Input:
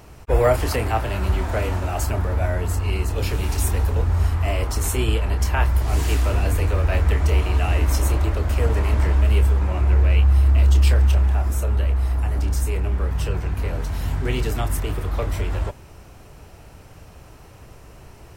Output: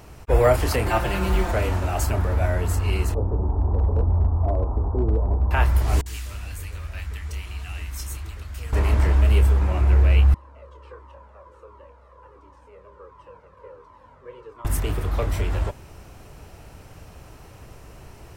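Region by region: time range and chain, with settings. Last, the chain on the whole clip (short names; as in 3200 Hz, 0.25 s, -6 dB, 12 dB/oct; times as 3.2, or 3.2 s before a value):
0.86–1.52 comb 5.7 ms, depth 95% + short-mantissa float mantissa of 4-bit
3.14–5.51 steep low-pass 1000 Hz + bell 130 Hz -3.5 dB 0.26 oct + hard clip -14 dBFS
6.01–8.73 passive tone stack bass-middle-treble 5-5-5 + bands offset in time lows, highs 50 ms, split 630 Hz
10.34–14.65 delta modulation 64 kbps, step -36 dBFS + double band-pass 730 Hz, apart 0.91 oct + cascading flanger falling 1.4 Hz
whole clip: dry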